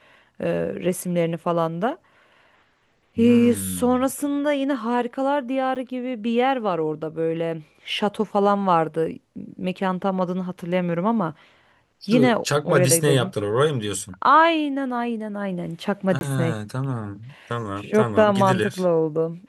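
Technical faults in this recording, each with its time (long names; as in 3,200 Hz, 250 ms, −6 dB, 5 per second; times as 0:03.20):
0:05.75–0:05.76: drop-out 7.6 ms
0:16.19–0:16.21: drop-out 21 ms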